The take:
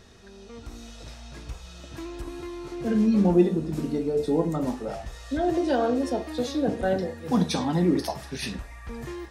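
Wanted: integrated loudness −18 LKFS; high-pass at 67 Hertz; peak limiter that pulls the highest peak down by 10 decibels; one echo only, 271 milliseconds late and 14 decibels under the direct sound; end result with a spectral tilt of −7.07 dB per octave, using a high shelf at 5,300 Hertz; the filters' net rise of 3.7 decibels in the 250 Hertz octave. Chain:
high-pass filter 67 Hz
parametric band 250 Hz +5 dB
high-shelf EQ 5,300 Hz −7.5 dB
brickwall limiter −15 dBFS
single-tap delay 271 ms −14 dB
level +7 dB

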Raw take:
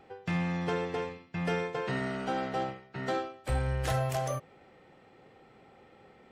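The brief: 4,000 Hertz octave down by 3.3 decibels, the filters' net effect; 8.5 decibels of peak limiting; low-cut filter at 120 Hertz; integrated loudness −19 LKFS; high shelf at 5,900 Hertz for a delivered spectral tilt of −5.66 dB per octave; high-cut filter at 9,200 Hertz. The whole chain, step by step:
high-pass filter 120 Hz
low-pass filter 9,200 Hz
parametric band 4,000 Hz −5.5 dB
high-shelf EQ 5,900 Hz +3 dB
level +18.5 dB
brickwall limiter −9.5 dBFS

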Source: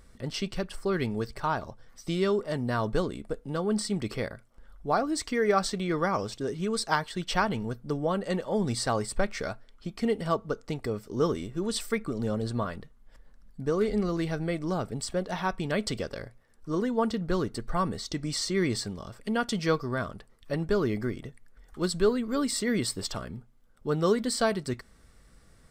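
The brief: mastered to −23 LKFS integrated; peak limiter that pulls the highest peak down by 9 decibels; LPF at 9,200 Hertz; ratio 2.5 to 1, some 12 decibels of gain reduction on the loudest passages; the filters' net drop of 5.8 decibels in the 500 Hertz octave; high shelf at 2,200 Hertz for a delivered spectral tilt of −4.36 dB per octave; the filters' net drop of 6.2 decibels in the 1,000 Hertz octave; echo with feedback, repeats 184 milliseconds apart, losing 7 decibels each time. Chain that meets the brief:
low-pass filter 9,200 Hz
parametric band 500 Hz −6 dB
parametric band 1,000 Hz −8 dB
high-shelf EQ 2,200 Hz +7 dB
downward compressor 2.5 to 1, threshold −42 dBFS
brickwall limiter −31.5 dBFS
repeating echo 184 ms, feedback 45%, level −7 dB
level +19 dB

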